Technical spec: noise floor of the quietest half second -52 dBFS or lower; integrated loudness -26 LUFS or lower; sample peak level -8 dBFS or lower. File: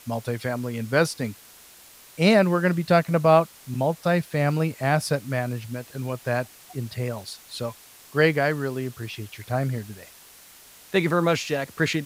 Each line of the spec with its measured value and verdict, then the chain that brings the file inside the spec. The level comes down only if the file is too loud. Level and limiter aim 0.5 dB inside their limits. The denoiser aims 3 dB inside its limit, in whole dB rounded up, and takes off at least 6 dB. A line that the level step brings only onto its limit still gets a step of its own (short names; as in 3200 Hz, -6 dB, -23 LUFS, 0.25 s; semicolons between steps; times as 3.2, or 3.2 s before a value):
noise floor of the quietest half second -49 dBFS: fail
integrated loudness -24.5 LUFS: fail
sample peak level -5.0 dBFS: fail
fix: denoiser 6 dB, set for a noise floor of -49 dBFS; gain -2 dB; limiter -8.5 dBFS